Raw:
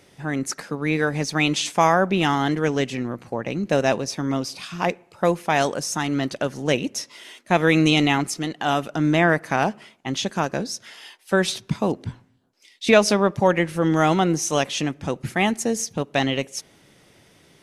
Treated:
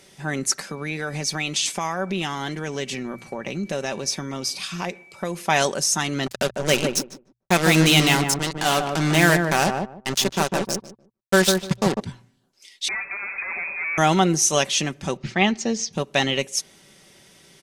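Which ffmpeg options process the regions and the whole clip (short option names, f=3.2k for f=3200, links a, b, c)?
-filter_complex "[0:a]asettb=1/sr,asplit=3[a][b][c];[a]atrim=end=0.674[d];[b]atrim=start=0.67:end=5.37,asetpts=PTS-STARTPTS,afade=t=in:d=0.004:c=qsin,afade=t=out:st=4.696:d=0.004:c=qsin,aeval=exprs='val(0)+0.00251*sin(2*PI*2300*n/s)':c=same,acompressor=threshold=-25dB:ratio=3:attack=3.2:release=140:knee=1:detection=peak[e];[c]atrim=start=5.366[f];[d][e]acrossfade=d=0.004:c1=hsin:c2=qsin[g];[g][f]acrossfade=d=0.004:c1=qsin:c2=hsin,asettb=1/sr,asplit=3[h][i][j];[h]atrim=end=6.264[k];[i]atrim=start=6.26:end=12,asetpts=PTS-STARTPTS,afade=t=in:d=0.004:c=qsin,afade=t=out:st=5.736:d=0.004:c=qsin,acrusher=bits=3:mix=0:aa=0.5,asplit=2[l][m];[m]adelay=150,lowpass=f=840:p=1,volume=-3dB,asplit=2[n][o];[o]adelay=150,lowpass=f=840:p=1,volume=0.22,asplit=2[p][q];[q]adelay=150,lowpass=f=840:p=1,volume=0.22[r];[l][n][p][r]amix=inputs=4:normalize=0,atrim=end_sample=253134[s];[j]atrim=start=11.996[t];[k][s]acrossfade=d=0.004:c1=hsin:c2=qsin[u];[u][t]acrossfade=d=0.004:c1=qsin:c2=hsin,asettb=1/sr,asplit=3[v][w][x];[v]atrim=end=12.884[y];[w]atrim=start=12.88:end=13.98,asetpts=PTS-STARTPTS,afade=t=in:d=0.004:c=qsin,afade=t=out:st=1.096:d=0.004:c=qsin,aeval=exprs='val(0)+0.5*0.0299*sgn(val(0))':c=same,aeval=exprs='(tanh(28.2*val(0)+0.2)-tanh(0.2))/28.2':c=same,lowpass=f=2.2k:t=q:w=0.5098,lowpass=f=2.2k:t=q:w=0.6013,lowpass=f=2.2k:t=q:w=0.9,lowpass=f=2.2k:t=q:w=2.563,afreqshift=-2600[z];[x]atrim=start=13.976[aa];[y][z]acrossfade=d=0.004:c1=hsin:c2=qsin[ab];[ab][aa]acrossfade=d=0.004:c1=qsin:c2=hsin,asettb=1/sr,asplit=3[ac][ad][ae];[ac]atrim=end=15.174[af];[ad]atrim=start=15.17:end=15.93,asetpts=PTS-STARTPTS,afade=t=in:d=0.004:c=qsin,afade=t=out:st=0.756:d=0.004:c=qsin,lowpass=f=5.3k:w=0.5412,lowpass=f=5.3k:w=1.3066,equalizer=f=1.5k:t=o:w=0.28:g=-3[ag];[ae]atrim=start=15.926[ah];[af][ag]acrossfade=d=0.004:c1=hsin:c2=qsin[ai];[ai][ah]acrossfade=d=0.004:c1=qsin:c2=hsin,equalizer=f=7.4k:w=0.39:g=8,bandreject=f=60:t=h:w=6,bandreject=f=120:t=h:w=6,aecho=1:1:5.2:0.38,volume=-1dB"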